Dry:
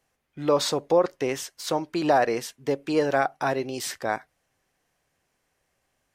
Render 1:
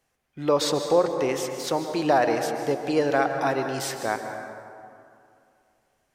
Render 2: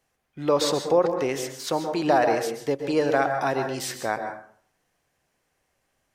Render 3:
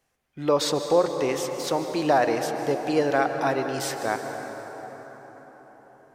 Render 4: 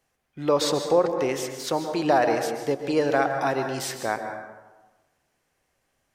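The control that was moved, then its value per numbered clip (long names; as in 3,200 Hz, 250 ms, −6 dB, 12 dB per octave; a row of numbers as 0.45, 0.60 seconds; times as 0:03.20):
dense smooth reverb, RT60: 2.5, 0.55, 5.3, 1.2 seconds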